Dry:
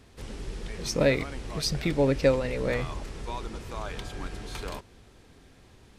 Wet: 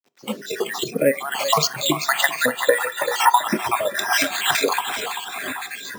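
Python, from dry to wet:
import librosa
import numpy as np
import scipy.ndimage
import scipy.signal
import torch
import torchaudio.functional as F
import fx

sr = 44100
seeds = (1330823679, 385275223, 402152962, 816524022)

y = fx.spec_dropout(x, sr, seeds[0], share_pct=69)
y = fx.recorder_agc(y, sr, target_db=-15.5, rise_db_per_s=69.0, max_gain_db=30)
y = fx.high_shelf(y, sr, hz=3800.0, db=10.5, at=(4.11, 4.51))
y = fx.quant_dither(y, sr, seeds[1], bits=8, dither='none')
y = fx.air_absorb(y, sr, metres=350.0, at=(0.84, 1.31))
y = fx.echo_feedback(y, sr, ms=389, feedback_pct=53, wet_db=-8.5)
y = np.repeat(y[::4], 4)[:len(y)]
y = scipy.signal.sosfilt(scipy.signal.butter(4, 190.0, 'highpass', fs=sr, output='sos'), y)
y = fx.rev_fdn(y, sr, rt60_s=0.83, lf_ratio=1.5, hf_ratio=0.55, size_ms=15.0, drr_db=14.0)
y = fx.noise_reduce_blind(y, sr, reduce_db=16)
y = fx.comb(y, sr, ms=2.2, depth=0.81, at=(2.68, 3.36))
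y = y * librosa.db_to_amplitude(6.5)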